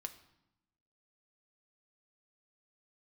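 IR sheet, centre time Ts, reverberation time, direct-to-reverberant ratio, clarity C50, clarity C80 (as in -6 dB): 7 ms, 0.85 s, 6.5 dB, 13.5 dB, 16.0 dB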